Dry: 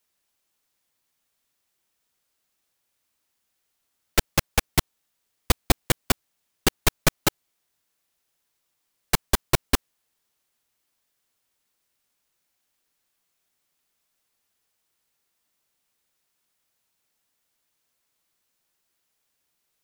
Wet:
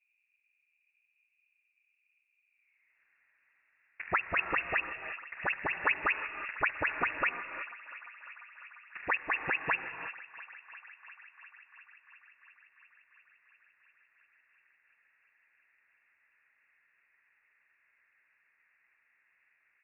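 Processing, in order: delay that grows with frequency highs early, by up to 178 ms; short-mantissa float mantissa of 2-bit; low-pass sweep 270 Hz -> 900 Hz, 2.42–3.02 s; compressor with a negative ratio -30 dBFS, ratio -1; high-pass 50 Hz; distance through air 310 m; on a send: bucket-brigade echo 346 ms, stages 4096, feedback 80%, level -16.5 dB; on the sum: gated-style reverb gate 400 ms rising, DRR 9.5 dB; frequency inversion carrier 2.7 kHz; trim +4 dB

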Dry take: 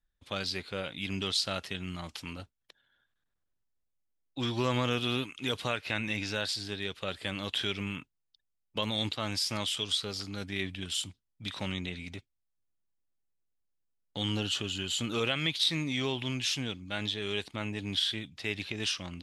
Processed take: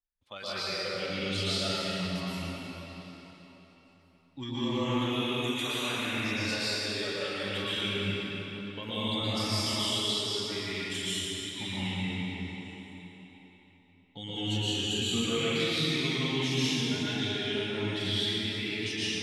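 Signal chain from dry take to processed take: 5.25–5.86 s: tilt EQ +3 dB/octave; spectral noise reduction 12 dB; peak limiter -24 dBFS, peak gain reduction 9.5 dB; repeats whose band climbs or falls 193 ms, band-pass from 220 Hz, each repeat 0.7 oct, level -8.5 dB; reverberation RT60 4.0 s, pre-delay 110 ms, DRR -11 dB; trim -5 dB

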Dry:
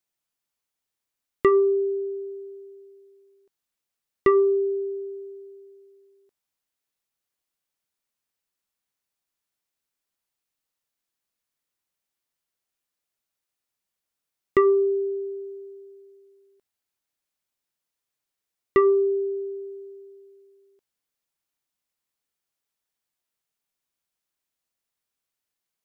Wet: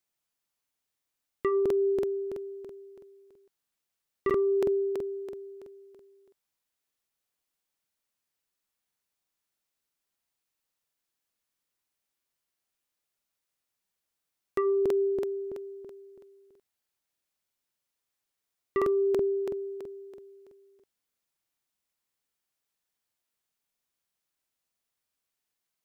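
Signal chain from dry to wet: peak limiter -22 dBFS, peak gain reduction 10.5 dB; crackling interface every 0.33 s, samples 2048, repeat, from 0.62 s

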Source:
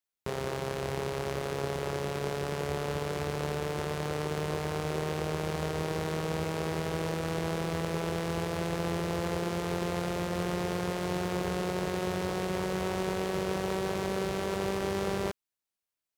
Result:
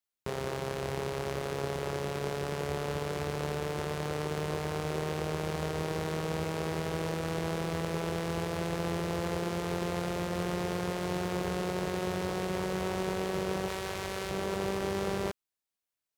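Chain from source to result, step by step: 13.68–14.31 s: FFT filter 100 Hz 0 dB, 180 Hz -9 dB, 2.1 kHz +2 dB; trim -1 dB

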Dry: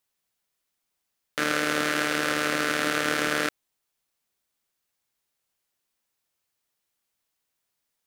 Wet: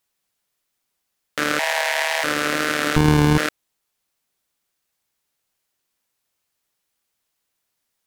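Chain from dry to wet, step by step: wow and flutter 21 cents; 1.59–2.24 s: frequency shift +350 Hz; 2.96–3.38 s: sliding maximum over 65 samples; trim +4 dB

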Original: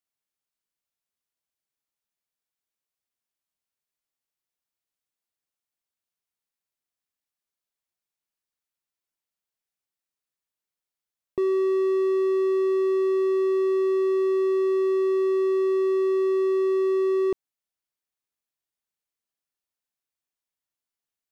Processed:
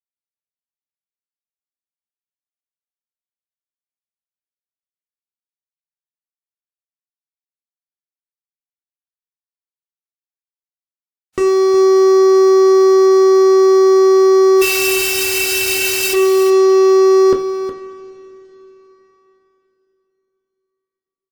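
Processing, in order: 14.61–16.13 s: formants flattened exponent 0.1; reverb removal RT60 0.7 s; peak limiter -10.5 dBFS, peak gain reduction 7 dB; fuzz box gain 36 dB, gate -43 dBFS; delay 365 ms -11 dB; on a send at -1.5 dB: reverberation, pre-delay 3 ms; on the sum: WMA 128 kbps 44.1 kHz

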